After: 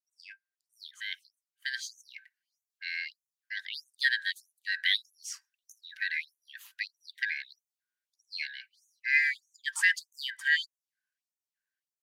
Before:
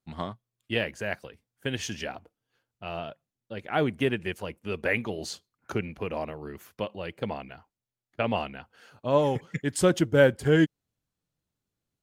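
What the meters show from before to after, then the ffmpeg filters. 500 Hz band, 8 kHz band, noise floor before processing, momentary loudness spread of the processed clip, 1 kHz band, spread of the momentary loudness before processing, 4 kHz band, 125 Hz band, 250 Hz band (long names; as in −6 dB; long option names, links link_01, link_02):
below −40 dB, −3.0 dB, below −85 dBFS, 21 LU, below −25 dB, 18 LU, +4.0 dB, below −40 dB, below −40 dB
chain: -af "afftfilt=real='real(if(lt(b,272),68*(eq(floor(b/68),0)*3+eq(floor(b/68),1)*0+eq(floor(b/68),2)*1+eq(floor(b/68),3)*2)+mod(b,68),b),0)':imag='imag(if(lt(b,272),68*(eq(floor(b/68),0)*3+eq(floor(b/68),1)*0+eq(floor(b/68),2)*1+eq(floor(b/68),3)*2)+mod(b,68),b),0)':win_size=2048:overlap=0.75,dynaudnorm=framelen=830:gausssize=5:maxgain=8dB,afftfilt=real='re*gte(b*sr/1024,830*pow(5900/830,0.5+0.5*sin(2*PI*1.6*pts/sr)))':imag='im*gte(b*sr/1024,830*pow(5900/830,0.5+0.5*sin(2*PI*1.6*pts/sr)))':win_size=1024:overlap=0.75,volume=-7.5dB"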